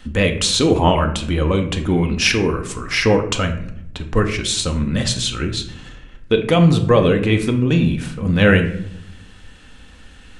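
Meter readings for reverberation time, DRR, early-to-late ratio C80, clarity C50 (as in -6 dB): 0.75 s, 4.5 dB, 13.5 dB, 10.0 dB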